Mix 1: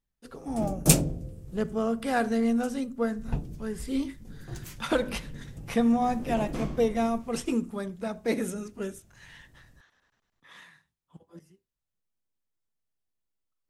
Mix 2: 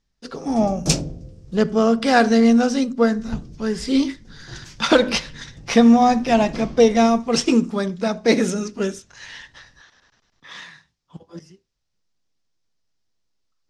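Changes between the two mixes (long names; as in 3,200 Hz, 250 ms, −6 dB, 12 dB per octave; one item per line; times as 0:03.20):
speech +11.0 dB
master: add low-pass with resonance 5,400 Hz, resonance Q 2.6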